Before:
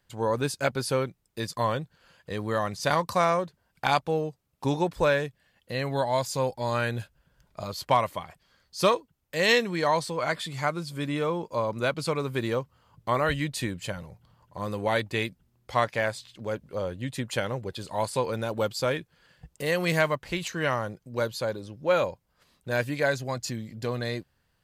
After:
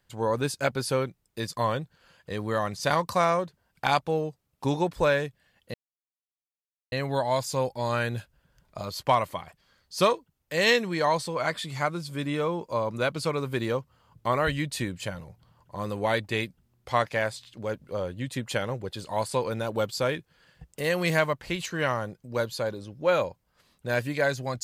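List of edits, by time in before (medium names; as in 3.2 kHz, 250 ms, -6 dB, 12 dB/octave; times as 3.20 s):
5.74 s: insert silence 1.18 s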